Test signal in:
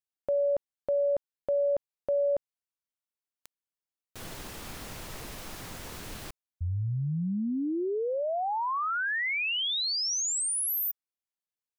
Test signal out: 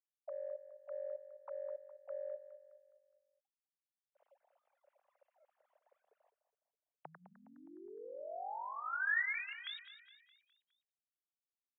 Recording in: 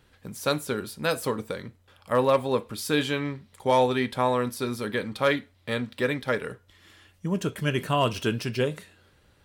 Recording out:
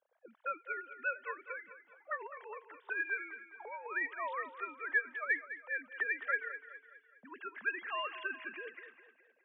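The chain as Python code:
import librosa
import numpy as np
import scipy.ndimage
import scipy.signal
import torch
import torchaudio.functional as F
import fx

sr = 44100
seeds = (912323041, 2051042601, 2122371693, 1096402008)

p1 = fx.sine_speech(x, sr)
p2 = fx.over_compress(p1, sr, threshold_db=-23.0, ratio=-0.5)
p3 = fx.auto_wah(p2, sr, base_hz=530.0, top_hz=1800.0, q=3.4, full_db=-32.0, direction='up')
p4 = fx.cheby_harmonics(p3, sr, harmonics=(2,), levels_db=(-38,), full_scale_db=-19.0)
y = p4 + fx.echo_feedback(p4, sr, ms=207, feedback_pct=47, wet_db=-12.5, dry=0)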